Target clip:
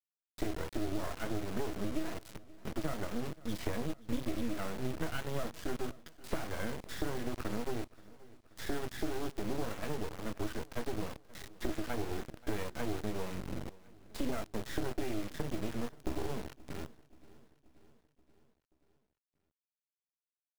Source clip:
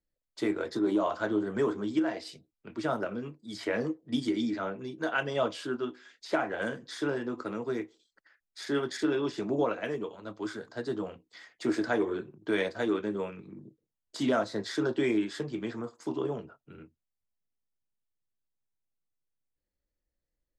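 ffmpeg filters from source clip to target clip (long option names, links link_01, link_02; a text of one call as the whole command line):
ffmpeg -i in.wav -af "lowpass=2800,acompressor=threshold=-38dB:ratio=8,acrusher=bits=5:dc=4:mix=0:aa=0.000001,lowshelf=frequency=290:gain=8,aecho=1:1:530|1060|1590|2120|2650:0.0841|0.0496|0.0293|0.0173|0.0102,volume=4.5dB" out.wav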